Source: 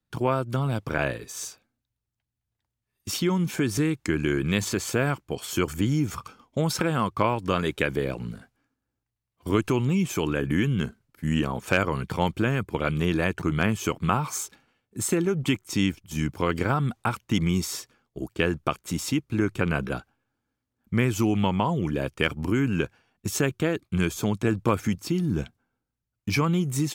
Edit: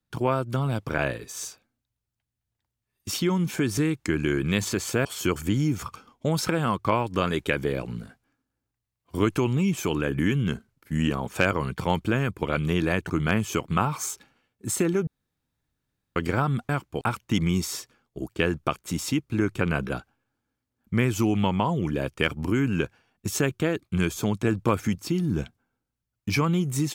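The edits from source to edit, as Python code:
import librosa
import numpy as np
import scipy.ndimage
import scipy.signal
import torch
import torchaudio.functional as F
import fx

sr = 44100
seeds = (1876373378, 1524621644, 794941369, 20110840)

y = fx.edit(x, sr, fx.move(start_s=5.05, length_s=0.32, to_s=17.01),
    fx.room_tone_fill(start_s=15.39, length_s=1.09), tone=tone)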